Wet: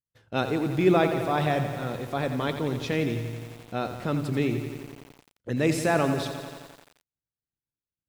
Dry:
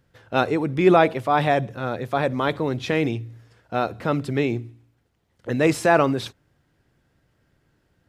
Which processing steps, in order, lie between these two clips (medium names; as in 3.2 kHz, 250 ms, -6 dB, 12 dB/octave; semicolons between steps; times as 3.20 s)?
expander -46 dBFS; peaking EQ 1 kHz -6.5 dB 2.7 oct; bit-crushed delay 87 ms, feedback 80%, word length 7-bit, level -9.5 dB; trim -2 dB